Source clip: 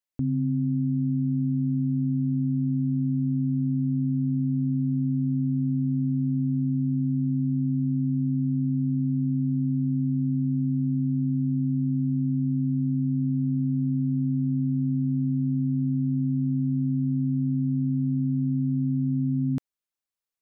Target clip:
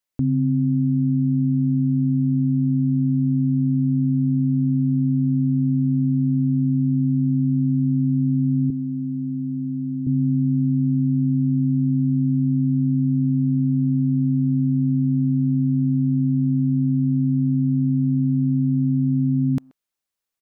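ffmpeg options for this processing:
-filter_complex "[0:a]asettb=1/sr,asplit=3[s0][s1][s2];[s0]atrim=end=8.704[s3];[s1]atrim=start=8.7:end=10.07,asetpts=PTS-STARTPTS,afade=t=in:d=0.004:c=qsin,afade=t=out:st=1.366:d=0.004:c=qsin,highpass=f=380:p=1[s4];[s2]atrim=start=10.066[s5];[s3][s4]acrossfade=d=0.004:c1=hsin:c2=qsin[s6];[s6][s5]acrossfade=d=0.004:c1=qsin:c2=hsin,asplit=2[s7][s8];[s8]adelay=130,highpass=300,lowpass=3400,asoftclip=type=hard:threshold=0.0398,volume=0.0708[s9];[s7][s9]amix=inputs=2:normalize=0,volume=1.88"

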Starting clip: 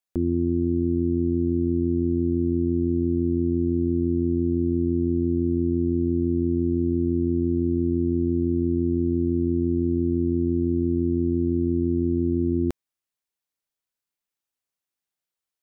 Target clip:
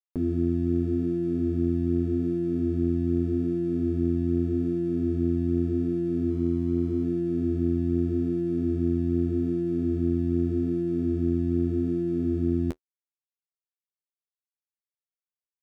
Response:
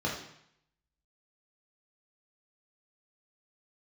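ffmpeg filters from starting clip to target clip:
-filter_complex "[0:a]asettb=1/sr,asplit=3[s0][s1][s2];[s0]atrim=end=6.304[s3];[s1]atrim=start=6.3:end=7.04,asetpts=PTS-STARTPTS,afade=t=in:d=0.004:c=qsin,afade=t=out:st=0.736:d=0.004:c=qsin,lowshelf=f=94:g=-3[s4];[s2]atrim=start=7.036[s5];[s3][s4]acrossfade=d=0.004:c1=hsin:c2=qsin[s6];[s6][s5]acrossfade=d=0.004:c1=qsin:c2=hsin,aeval=exprs='sgn(val(0))*max(abs(val(0))-0.00335,0)':c=same,flanger=delay=5.8:depth=7:regen=-27:speed=0.83:shape=sinusoidal,volume=1.12"

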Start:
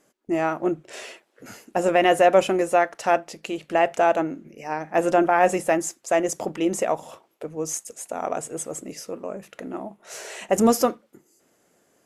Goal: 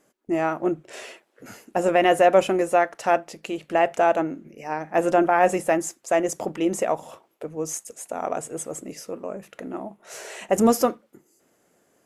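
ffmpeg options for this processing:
-af "equalizer=f=4900:t=o:w=1.8:g=-2.5"

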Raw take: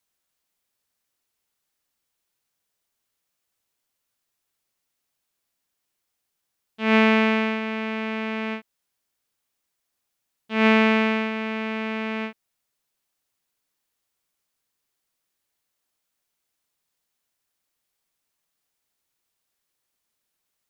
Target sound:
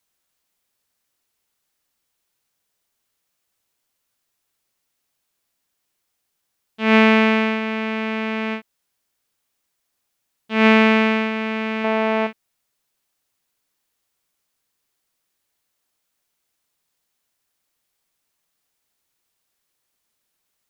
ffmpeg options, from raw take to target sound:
-filter_complex "[0:a]asettb=1/sr,asplit=3[s0][s1][s2];[s0]atrim=end=11.844[s3];[s1]atrim=start=11.84:end=12.27,asetpts=PTS-STARTPTS,afade=t=in:d=0.004:c=qsin,afade=t=out:st=0.426:d=0.004:c=qsin,equalizer=f=690:t=o:w=1.4:g=11.5[s4];[s2]atrim=start=12.266[s5];[s3][s4]acrossfade=d=0.004:c1=hsin:c2=qsin[s6];[s6][s5]acrossfade=d=0.004:c1=qsin:c2=hsin,volume=1.58"

